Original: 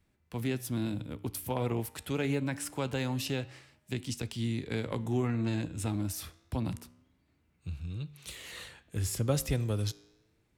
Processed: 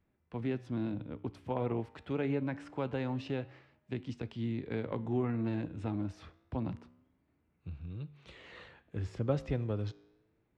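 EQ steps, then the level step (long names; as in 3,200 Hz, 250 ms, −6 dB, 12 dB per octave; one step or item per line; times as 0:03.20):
head-to-tape spacing loss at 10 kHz 39 dB
low-shelf EQ 170 Hz −8.5 dB
+2.0 dB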